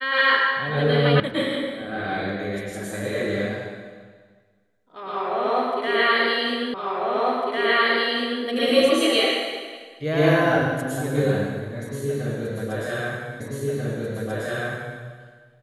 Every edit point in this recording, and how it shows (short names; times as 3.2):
1.2 sound cut off
6.74 repeat of the last 1.7 s
13.4 repeat of the last 1.59 s